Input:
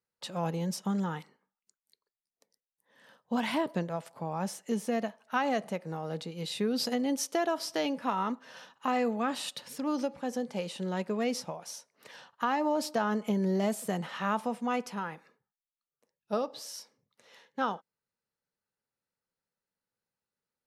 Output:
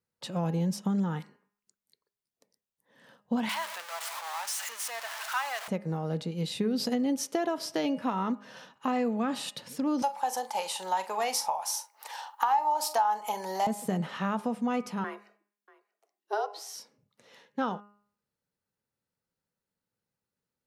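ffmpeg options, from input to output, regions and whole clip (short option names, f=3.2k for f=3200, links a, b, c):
-filter_complex "[0:a]asettb=1/sr,asplit=3[a][b][c];[a]atrim=end=3.494[d];[b]atrim=start=3.49:end=5.68,asetpts=PTS-STARTPTS,afade=t=in:d=0.004:c=qsin,afade=t=out:st=2.186:d=0.004:c=qsin,aeval=exprs='val(0)+0.5*0.0316*sgn(val(0))':c=same,highpass=f=950:w=0.5412,highpass=f=950:w=1.3066[e];[c]atrim=start=5.676[f];[d][e]acrossfade=d=0.004:c1=hsin:c2=qsin[g];[g][f]acrossfade=d=0.004:c1=qsin:c2=hsin,asettb=1/sr,asplit=3[h][i][j];[h]atrim=end=10.024[k];[i]atrim=start=10.02:end=13.67,asetpts=PTS-STARTPTS,afade=t=in:d=0.004:c=qsin,afade=t=out:st=3.646:d=0.004:c=qsin,highpass=f=850:t=q:w=10,aemphasis=mode=production:type=75kf,asplit=2[l][m];[m]adelay=43,volume=-13dB[n];[l][n]amix=inputs=2:normalize=0,atrim=end_sample=160965[o];[j]atrim=start=13.666[p];[k][o]acrossfade=d=0.004:c1=hsin:c2=qsin[q];[q][p]acrossfade=d=0.004:c1=qsin:c2=hsin,asettb=1/sr,asplit=3[r][s][t];[r]atrim=end=15.044[u];[s]atrim=start=15.04:end=16.75,asetpts=PTS-STARTPTS,afade=t=in:d=0.004:c=qsin,afade=t=out:st=1.706:d=0.004:c=qsin,afreqshift=200,aecho=1:1:636:0.0794,atrim=end_sample=75411[v];[t]atrim=start=16.746[w];[u][v]acrossfade=d=0.004:c1=hsin:c2=qsin[x];[x][w]acrossfade=d=0.004:c1=qsin:c2=hsin,equalizer=f=110:w=0.31:g=8,bandreject=f=205.1:t=h:w=4,bandreject=f=410.2:t=h:w=4,bandreject=f=615.3:t=h:w=4,bandreject=f=820.4:t=h:w=4,bandreject=f=1.0255k:t=h:w=4,bandreject=f=1.2306k:t=h:w=4,bandreject=f=1.4357k:t=h:w=4,bandreject=f=1.6408k:t=h:w=4,bandreject=f=1.8459k:t=h:w=4,bandreject=f=2.051k:t=h:w=4,bandreject=f=2.2561k:t=h:w=4,bandreject=f=2.4612k:t=h:w=4,bandreject=f=2.6663k:t=h:w=4,bandreject=f=2.8714k:t=h:w=4,acompressor=threshold=-25dB:ratio=4"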